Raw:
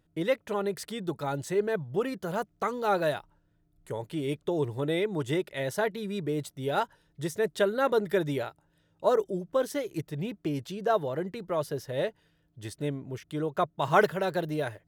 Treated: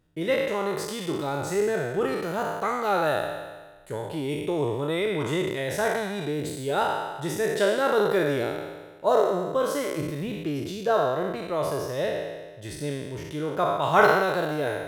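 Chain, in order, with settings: spectral trails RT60 1.38 s

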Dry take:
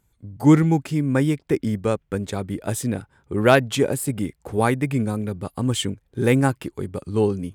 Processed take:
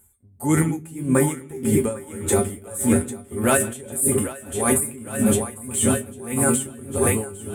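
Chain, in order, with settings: recorder AGC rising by 5.8 dB/s; resonant high shelf 6800 Hz +11.5 dB, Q 3; notches 60/120/180/240 Hz; resonator 79 Hz, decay 0.18 s, harmonics odd, mix 90%; split-band echo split 350 Hz, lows 0.24 s, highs 0.798 s, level -3 dB; on a send at -15 dB: reverb RT60 0.45 s, pre-delay 0.108 s; on the sum: maximiser +20 dB; dB-linear tremolo 1.7 Hz, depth 21 dB; gain -6.5 dB

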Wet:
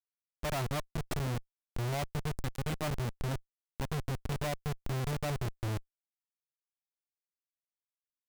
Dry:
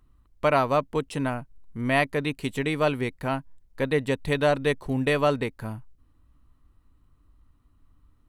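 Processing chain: EQ curve 120 Hz 0 dB, 310 Hz -29 dB, 700 Hz -8 dB, 2000 Hz -24 dB, 7600 Hz +2 dB; Schmitt trigger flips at -35.5 dBFS; gain +5.5 dB

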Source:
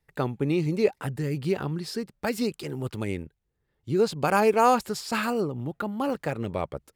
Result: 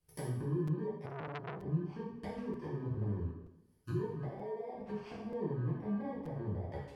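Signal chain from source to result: FFT order left unsorted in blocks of 32 samples; compressor, threshold -26 dBFS, peak gain reduction 11 dB; limiter -23.5 dBFS, peak gain reduction 8 dB; 4.24–4.75 HPF 270 Hz 24 dB/oct; 5.55–6.11 bell 1800 Hz +6 dB 2 oct; treble ducked by the level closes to 580 Hz, closed at -30.5 dBFS; plate-style reverb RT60 0.79 s, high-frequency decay 0.95×, DRR -6.5 dB; dynamic EQ 350 Hz, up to -6 dB, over -37 dBFS, Q 0.75; crackling interface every 0.93 s, samples 256, repeat, from 0.67; 1.06–1.62 core saturation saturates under 1700 Hz; gain -7 dB

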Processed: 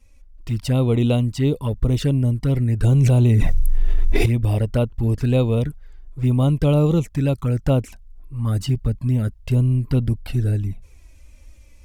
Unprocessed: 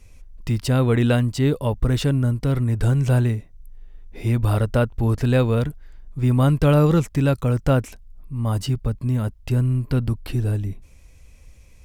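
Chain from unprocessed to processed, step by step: AGC gain up to 7 dB; envelope flanger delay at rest 3.8 ms, full sweep at -9.5 dBFS; 2.84–4.26 fast leveller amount 100%; gain -4 dB

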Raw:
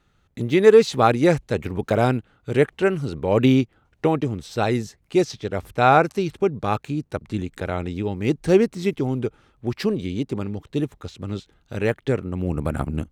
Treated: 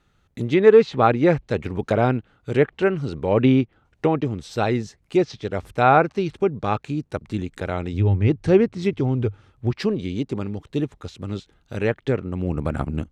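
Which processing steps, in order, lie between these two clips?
7.93–9.71 bell 100 Hz +14.5 dB 0.47 oct; treble ducked by the level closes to 2900 Hz, closed at -15 dBFS

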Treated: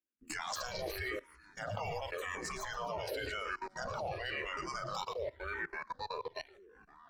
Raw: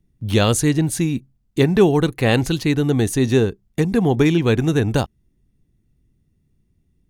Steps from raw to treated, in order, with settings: delay-line pitch shifter -3.5 st; spectral gate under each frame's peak -20 dB weak; in parallel at -1.5 dB: limiter -24 dBFS, peak gain reduction 11 dB; on the sum: fifteen-band EQ 100 Hz +8 dB, 400 Hz -5 dB, 10000 Hz -12 dB; echoes that change speed 0.116 s, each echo -4 st, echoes 3, each echo -6 dB; spectral noise reduction 13 dB; dynamic EQ 600 Hz, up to +3 dB, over -44 dBFS, Q 0.71; on a send: thin delay 0.114 s, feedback 37%, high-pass 1600 Hz, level -15 dB; on the sum: level quantiser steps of 21 dB; endless phaser -0.92 Hz; gain +5.5 dB

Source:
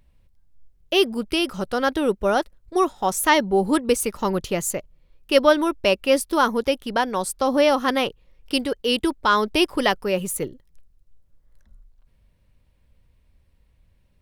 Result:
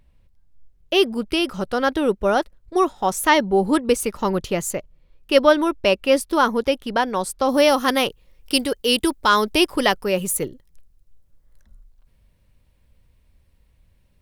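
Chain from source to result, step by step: high shelf 5800 Hz -4 dB, from 7.49 s +10.5 dB, from 9.55 s +4.5 dB; gain +1.5 dB

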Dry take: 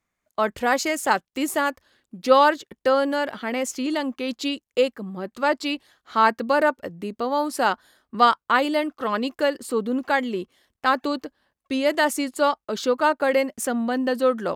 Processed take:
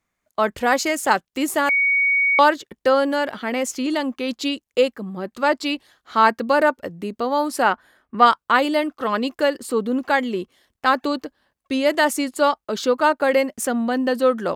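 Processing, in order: 1.69–2.39 bleep 2240 Hz -17.5 dBFS; 7.62–8.26 resonant high shelf 3100 Hz -7 dB, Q 1.5; gain +2.5 dB

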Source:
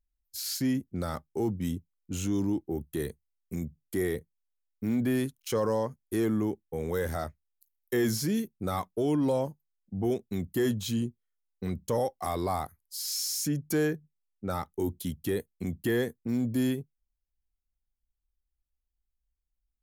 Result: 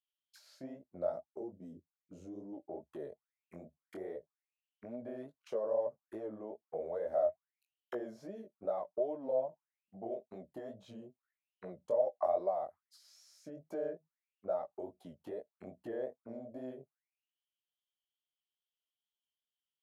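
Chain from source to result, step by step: 1.1–2.53 band shelf 1400 Hz -10 dB 3 oct; compressor 8:1, threshold -31 dBFS, peak gain reduction 8.5 dB; auto-wah 610–3200 Hz, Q 13, down, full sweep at -35 dBFS; chorus 2.4 Hz, delay 15.5 ms, depth 7.6 ms; gain +17.5 dB

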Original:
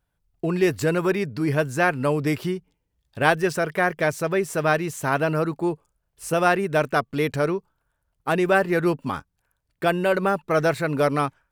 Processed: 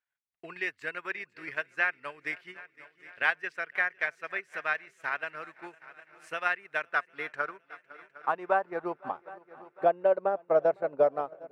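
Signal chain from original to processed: band-pass sweep 2000 Hz -> 630 Hz, 6.68–9.38; multi-head echo 0.253 s, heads second and third, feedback 50%, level -18 dB; transient shaper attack +5 dB, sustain -9 dB; gain -3 dB

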